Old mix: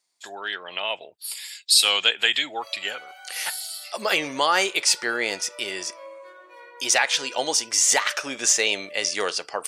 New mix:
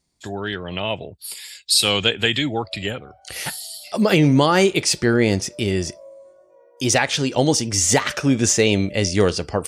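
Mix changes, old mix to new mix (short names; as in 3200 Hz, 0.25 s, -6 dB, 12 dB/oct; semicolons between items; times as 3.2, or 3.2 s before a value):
background: add band-pass 640 Hz, Q 7.1; master: remove HPF 800 Hz 12 dB/oct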